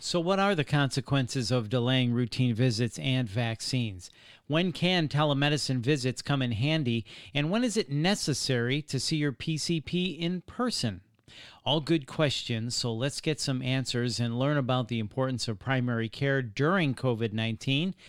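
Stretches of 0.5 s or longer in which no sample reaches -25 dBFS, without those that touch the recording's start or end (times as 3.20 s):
3.88–4.51 s
10.89–11.67 s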